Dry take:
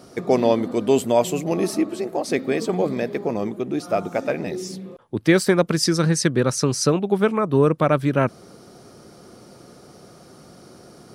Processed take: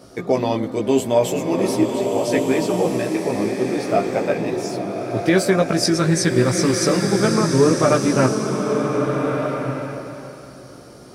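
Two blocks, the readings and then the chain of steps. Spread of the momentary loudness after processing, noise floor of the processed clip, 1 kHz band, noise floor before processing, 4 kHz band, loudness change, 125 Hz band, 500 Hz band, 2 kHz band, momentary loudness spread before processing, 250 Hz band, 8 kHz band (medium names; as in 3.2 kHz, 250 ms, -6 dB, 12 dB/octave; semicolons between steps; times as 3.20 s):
9 LU, -41 dBFS, +3.0 dB, -47 dBFS, +3.0 dB, +2.0 dB, +2.0 dB, +2.5 dB, +2.5 dB, 8 LU, +3.0 dB, +3.0 dB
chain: chorus voices 6, 0.52 Hz, delay 17 ms, depth 2 ms; loudness maximiser +9 dB; swelling reverb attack 1460 ms, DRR 2.5 dB; trim -5 dB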